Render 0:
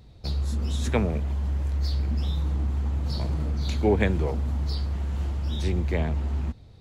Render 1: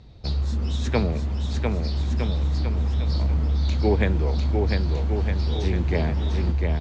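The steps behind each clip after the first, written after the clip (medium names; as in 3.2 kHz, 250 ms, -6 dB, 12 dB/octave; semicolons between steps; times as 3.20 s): low-pass 6.3 kHz 24 dB/octave; gain riding 2 s; on a send: bouncing-ball echo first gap 700 ms, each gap 0.8×, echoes 5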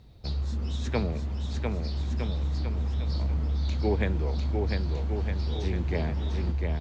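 bit crusher 12-bit; trim -5.5 dB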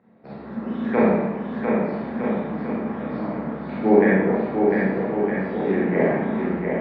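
Chebyshev band-pass 190–1900 Hz, order 3; level rider gain up to 6 dB; Schroeder reverb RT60 1 s, combs from 28 ms, DRR -7.5 dB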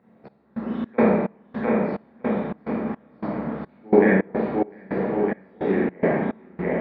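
trance gate "xx..xx.xx..x" 107 bpm -24 dB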